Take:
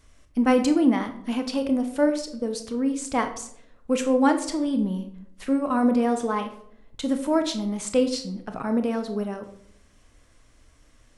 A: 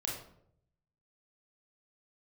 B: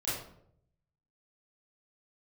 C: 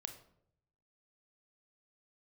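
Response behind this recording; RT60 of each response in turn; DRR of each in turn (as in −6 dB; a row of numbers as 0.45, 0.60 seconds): C; 0.70, 0.70, 0.70 seconds; −3.0, −12.0, 6.5 decibels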